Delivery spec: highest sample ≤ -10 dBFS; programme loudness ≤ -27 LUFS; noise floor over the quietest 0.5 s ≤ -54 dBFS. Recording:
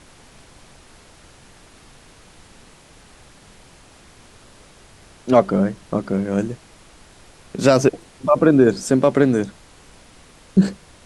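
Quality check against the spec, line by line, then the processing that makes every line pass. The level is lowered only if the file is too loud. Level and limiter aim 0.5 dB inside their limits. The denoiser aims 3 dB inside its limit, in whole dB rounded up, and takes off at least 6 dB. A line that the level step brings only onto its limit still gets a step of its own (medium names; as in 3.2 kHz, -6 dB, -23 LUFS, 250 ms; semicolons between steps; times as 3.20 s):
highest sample -3.0 dBFS: fail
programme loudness -18.5 LUFS: fail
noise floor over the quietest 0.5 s -48 dBFS: fail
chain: trim -9 dB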